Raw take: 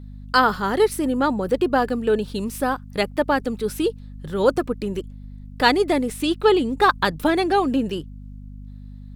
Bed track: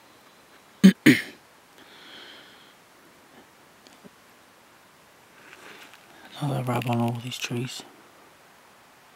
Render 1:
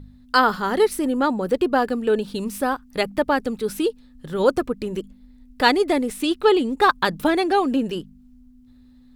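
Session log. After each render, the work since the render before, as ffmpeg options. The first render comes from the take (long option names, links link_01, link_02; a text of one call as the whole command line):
ffmpeg -i in.wav -af "bandreject=frequency=50:width_type=h:width=4,bandreject=frequency=100:width_type=h:width=4,bandreject=frequency=150:width_type=h:width=4,bandreject=frequency=200:width_type=h:width=4" out.wav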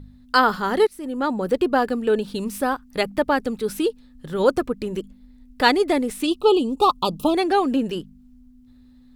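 ffmpeg -i in.wav -filter_complex "[0:a]asplit=3[link_01][link_02][link_03];[link_01]afade=type=out:start_time=6.26:duration=0.02[link_04];[link_02]asuperstop=centerf=1800:order=12:qfactor=1.4,afade=type=in:start_time=6.26:duration=0.02,afade=type=out:start_time=7.34:duration=0.02[link_05];[link_03]afade=type=in:start_time=7.34:duration=0.02[link_06];[link_04][link_05][link_06]amix=inputs=3:normalize=0,asplit=2[link_07][link_08];[link_07]atrim=end=0.87,asetpts=PTS-STARTPTS,afade=type=out:start_time=0.866:duration=0.004:curve=hsin:silence=0.0749894[link_09];[link_08]atrim=start=0.87,asetpts=PTS-STARTPTS,afade=type=in:duration=0.54:silence=0.0749894[link_10];[link_09][link_10]concat=n=2:v=0:a=1" out.wav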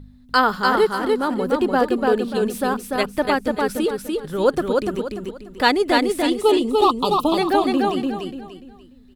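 ffmpeg -i in.wav -af "aecho=1:1:293|586|879|1172:0.708|0.227|0.0725|0.0232" out.wav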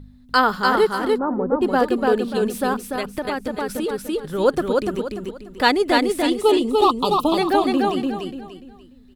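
ffmpeg -i in.wav -filter_complex "[0:a]asplit=3[link_01][link_02][link_03];[link_01]afade=type=out:start_time=1.17:duration=0.02[link_04];[link_02]lowpass=frequency=1200:width=0.5412,lowpass=frequency=1200:width=1.3066,afade=type=in:start_time=1.17:duration=0.02,afade=type=out:start_time=1.61:duration=0.02[link_05];[link_03]afade=type=in:start_time=1.61:duration=0.02[link_06];[link_04][link_05][link_06]amix=inputs=3:normalize=0,asettb=1/sr,asplit=3[link_07][link_08][link_09];[link_07]atrim=end=2.764[link_10];[link_08]atrim=start=2.76:end=3.89,asetpts=PTS-STARTPTS,afade=type=in:duration=0.004:curve=qsin,afade=type=out:start_time=1.126:duration=0.004:curve=qsin,acompressor=threshold=-20dB:ratio=6:attack=3.2:release=140:knee=1:detection=peak[link_11];[link_09]atrim=start=3.886[link_12];[link_10][link_11]acrossfade=duration=0.004:curve1=hsin:curve2=qsin[link_13];[link_13][link_12]acrossfade=duration=0.004:curve1=qsin:curve2=hsin" out.wav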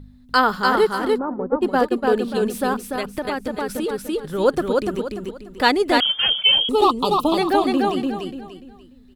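ffmpeg -i in.wav -filter_complex "[0:a]asplit=3[link_01][link_02][link_03];[link_01]afade=type=out:start_time=1.21:duration=0.02[link_04];[link_02]agate=range=-33dB:threshold=-19dB:ratio=3:release=100:detection=peak,afade=type=in:start_time=1.21:duration=0.02,afade=type=out:start_time=2.14:duration=0.02[link_05];[link_03]afade=type=in:start_time=2.14:duration=0.02[link_06];[link_04][link_05][link_06]amix=inputs=3:normalize=0,asettb=1/sr,asplit=3[link_07][link_08][link_09];[link_07]atrim=end=6.004[link_10];[link_08]atrim=start=6:end=6.69,asetpts=PTS-STARTPTS,afade=type=in:duration=0.004:curve=qsin,afade=type=out:start_time=0.686:duration=0.004:curve=qsin,lowpass=frequency=3000:width_type=q:width=0.5098,lowpass=frequency=3000:width_type=q:width=0.6013,lowpass=frequency=3000:width_type=q:width=0.9,lowpass=frequency=3000:width_type=q:width=2.563,afreqshift=-3500[link_11];[link_09]atrim=start=6.686[link_12];[link_10][link_11]acrossfade=duration=0.004:curve1=hsin:curve2=qsin[link_13];[link_13][link_12]acrossfade=duration=0.004:curve1=qsin:curve2=hsin" out.wav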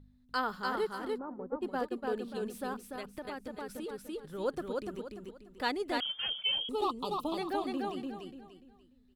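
ffmpeg -i in.wav -af "volume=-16dB" out.wav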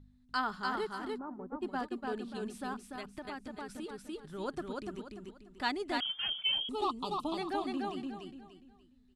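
ffmpeg -i in.wav -af "lowpass=frequency=10000:width=0.5412,lowpass=frequency=10000:width=1.3066,equalizer=frequency=500:width=5.7:gain=-14.5" out.wav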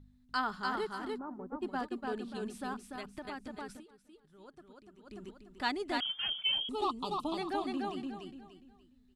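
ffmpeg -i in.wav -filter_complex "[0:a]asplit=3[link_01][link_02][link_03];[link_01]atrim=end=3.84,asetpts=PTS-STARTPTS,afade=type=out:start_time=3.7:duration=0.14:silence=0.149624[link_04];[link_02]atrim=start=3.84:end=5.01,asetpts=PTS-STARTPTS,volume=-16.5dB[link_05];[link_03]atrim=start=5.01,asetpts=PTS-STARTPTS,afade=type=in:duration=0.14:silence=0.149624[link_06];[link_04][link_05][link_06]concat=n=3:v=0:a=1" out.wav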